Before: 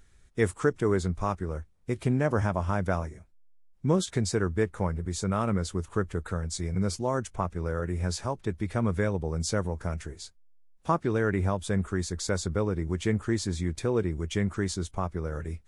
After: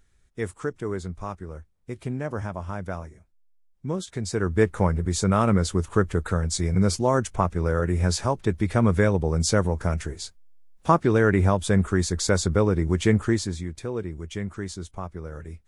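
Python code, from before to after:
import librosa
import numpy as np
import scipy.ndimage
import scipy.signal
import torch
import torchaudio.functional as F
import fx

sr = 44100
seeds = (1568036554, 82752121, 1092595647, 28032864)

y = fx.gain(x, sr, db=fx.line((4.13, -4.5), (4.63, 7.0), (13.24, 7.0), (13.69, -3.5)))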